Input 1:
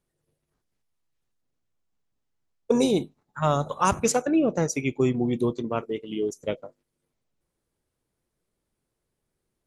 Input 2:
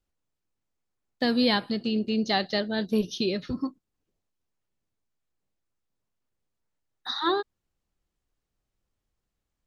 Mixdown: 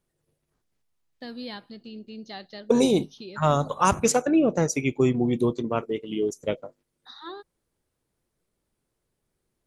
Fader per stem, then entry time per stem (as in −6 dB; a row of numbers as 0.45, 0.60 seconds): +1.5, −14.0 decibels; 0.00, 0.00 seconds